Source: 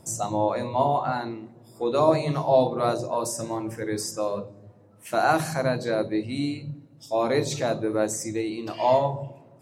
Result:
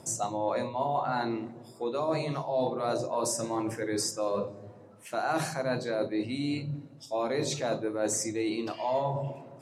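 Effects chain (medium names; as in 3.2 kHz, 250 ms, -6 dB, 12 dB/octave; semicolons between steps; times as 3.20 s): Bessel low-pass 9.1 kHz, order 2; reverberation RT60 0.30 s, pre-delay 7 ms, DRR 14.5 dB; reverse; compression 6:1, threshold -32 dBFS, peak gain reduction 17.5 dB; reverse; high-pass 190 Hz 6 dB/octave; trim +5.5 dB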